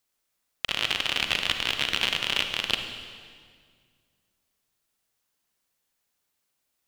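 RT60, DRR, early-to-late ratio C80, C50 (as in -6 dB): 1.9 s, 5.5 dB, 7.5 dB, 6.0 dB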